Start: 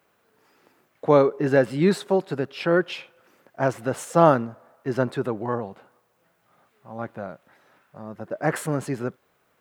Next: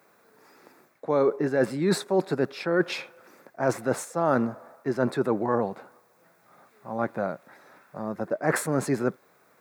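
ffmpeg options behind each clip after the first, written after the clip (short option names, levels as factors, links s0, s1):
-af "areverse,acompressor=threshold=0.0562:ratio=12,areverse,highpass=150,equalizer=f=3000:t=o:w=0.27:g=-13.5,volume=2"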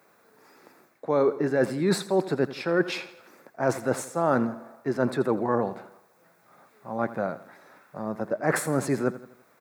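-af "aecho=1:1:83|166|249|332:0.168|0.0772|0.0355|0.0163"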